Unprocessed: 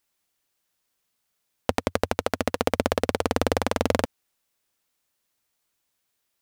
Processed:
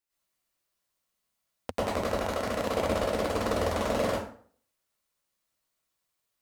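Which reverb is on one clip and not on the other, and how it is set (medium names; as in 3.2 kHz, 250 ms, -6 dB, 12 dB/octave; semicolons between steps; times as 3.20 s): plate-style reverb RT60 0.51 s, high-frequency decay 0.7×, pre-delay 90 ms, DRR -9 dB; trim -13 dB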